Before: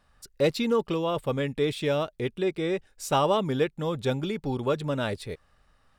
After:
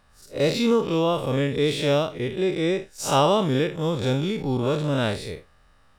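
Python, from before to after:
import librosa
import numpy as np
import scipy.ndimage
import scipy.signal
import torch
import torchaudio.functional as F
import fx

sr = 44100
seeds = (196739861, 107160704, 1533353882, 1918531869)

y = fx.spec_blur(x, sr, span_ms=109.0)
y = fx.dynamic_eq(y, sr, hz=5700.0, q=0.85, threshold_db=-54.0, ratio=4.0, max_db=5)
y = y * 10.0 ** (7.0 / 20.0)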